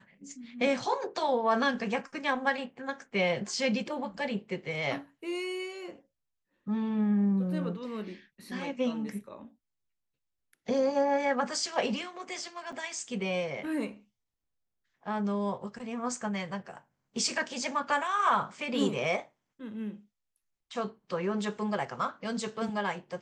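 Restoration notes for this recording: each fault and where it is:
12.72–12.73 gap 5.5 ms

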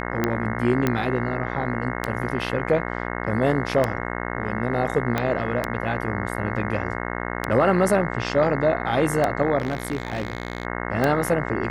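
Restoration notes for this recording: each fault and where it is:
buzz 60 Hz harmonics 36 -29 dBFS
tick 33 1/3 rpm -8 dBFS
0.87 pop -8 dBFS
5.18 pop -9 dBFS
9.58–10.65 clipped -20.5 dBFS

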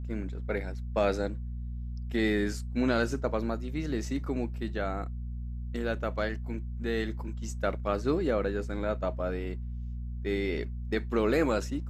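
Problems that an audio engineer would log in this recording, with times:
hum 60 Hz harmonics 4 -36 dBFS

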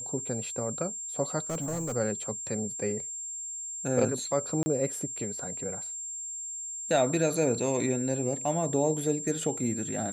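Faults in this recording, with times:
tone 7400 Hz -35 dBFS
1.5–1.96 clipped -28.5 dBFS
4.63–4.66 gap 30 ms

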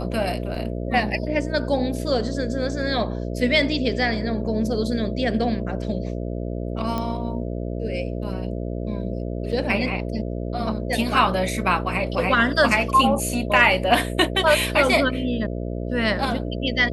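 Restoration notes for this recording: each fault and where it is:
buzz 60 Hz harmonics 11 -28 dBFS
0.55 gap 3.6 ms
6.98 pop -14 dBFS
9.52–9.53 gap 5.5 ms

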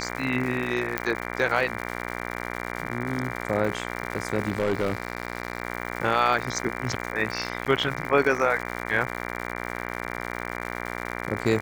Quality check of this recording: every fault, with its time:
buzz 60 Hz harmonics 39 -33 dBFS
crackle 190/s -31 dBFS
0.98 pop -9 dBFS
4.48–5.62 clipped -19.5 dBFS
7.65–7.66 gap 9 ms

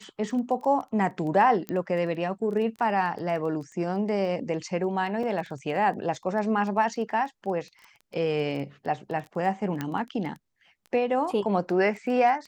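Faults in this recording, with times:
crackle 10/s -34 dBFS
1.69 pop -18 dBFS
5.23 gap 3.4 ms
9.81 pop -16 dBFS

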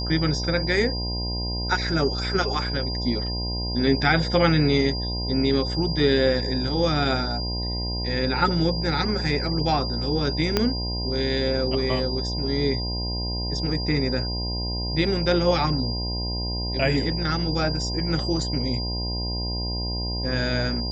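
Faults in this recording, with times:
buzz 60 Hz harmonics 17 -29 dBFS
tone 4800 Hz -30 dBFS
10.57 pop -6 dBFS

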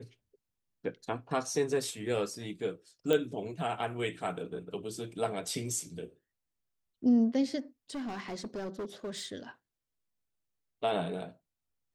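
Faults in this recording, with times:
3.13 pop -16 dBFS
7.9–9.33 clipped -34 dBFS

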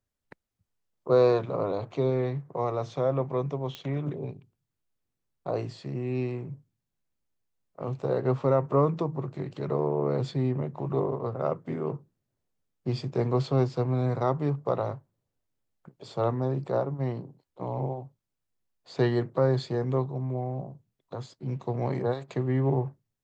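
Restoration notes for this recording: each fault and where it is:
3.75 pop -22 dBFS

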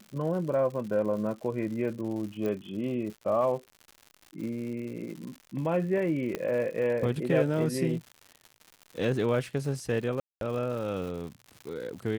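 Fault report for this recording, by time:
crackle 150/s -38 dBFS
2.46 pop -22 dBFS
6.35 pop -18 dBFS
10.2–10.41 gap 0.212 s

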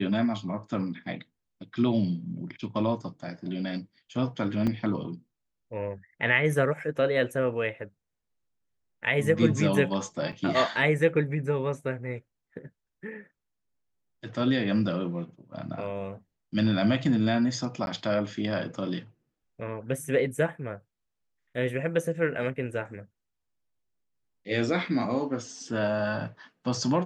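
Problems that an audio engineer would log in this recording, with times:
4.67 gap 4.7 ms
10.32–10.33 gap 6.6 ms
17.86–17.87 gap 11 ms

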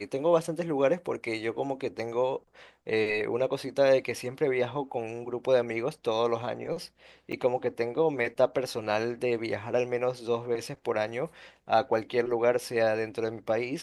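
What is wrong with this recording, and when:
7.32–7.33 gap 6.7 ms

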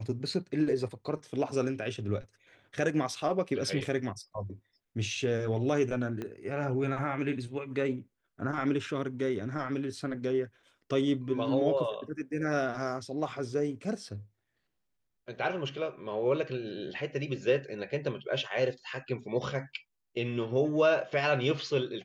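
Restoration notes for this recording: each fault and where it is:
6.22 pop -24 dBFS

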